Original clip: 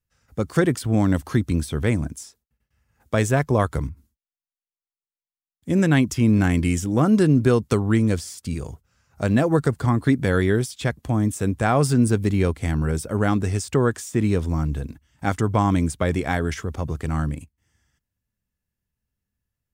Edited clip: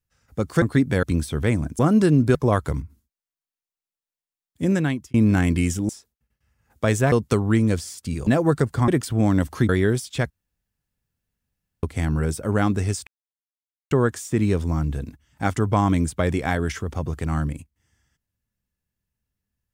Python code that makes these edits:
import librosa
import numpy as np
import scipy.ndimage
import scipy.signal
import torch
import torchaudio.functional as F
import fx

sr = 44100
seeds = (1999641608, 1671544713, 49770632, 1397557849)

y = fx.edit(x, sr, fx.swap(start_s=0.62, length_s=0.81, other_s=9.94, other_length_s=0.41),
    fx.swap(start_s=2.19, length_s=1.23, other_s=6.96, other_length_s=0.56),
    fx.fade_out_span(start_s=5.71, length_s=0.5),
    fx.cut(start_s=8.67, length_s=0.66),
    fx.room_tone_fill(start_s=10.96, length_s=1.53),
    fx.insert_silence(at_s=13.73, length_s=0.84), tone=tone)